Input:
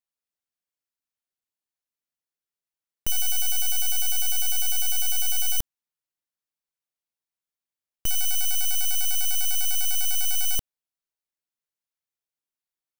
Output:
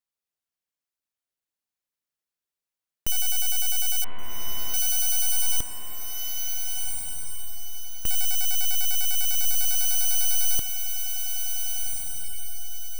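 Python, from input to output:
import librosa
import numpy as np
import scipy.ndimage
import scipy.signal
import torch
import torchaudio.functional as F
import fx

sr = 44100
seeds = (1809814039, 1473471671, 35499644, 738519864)

y = fx.delta_mod(x, sr, bps=16000, step_db=-40.5, at=(4.04, 4.74))
y = fx.echo_diffused(y, sr, ms=1520, feedback_pct=40, wet_db=-5.0)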